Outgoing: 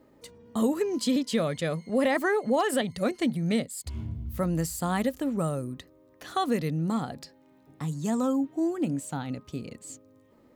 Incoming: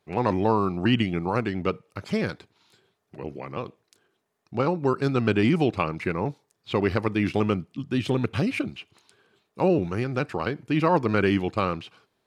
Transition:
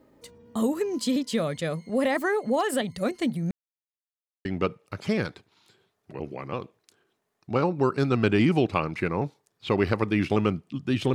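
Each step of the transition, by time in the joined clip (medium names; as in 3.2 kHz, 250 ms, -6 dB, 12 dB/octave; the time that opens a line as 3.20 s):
outgoing
3.51–4.45 s: mute
4.45 s: go over to incoming from 1.49 s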